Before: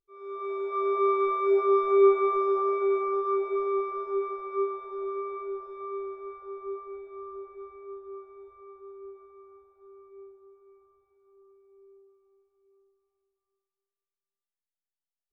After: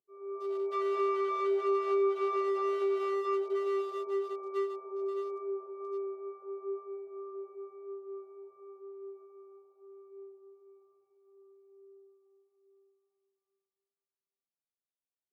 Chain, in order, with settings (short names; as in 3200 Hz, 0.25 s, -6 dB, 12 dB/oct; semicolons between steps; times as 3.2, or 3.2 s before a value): Wiener smoothing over 25 samples; HPF 160 Hz 24 dB/oct; compressor 3:1, threshold -29 dBFS, peak gain reduction 10 dB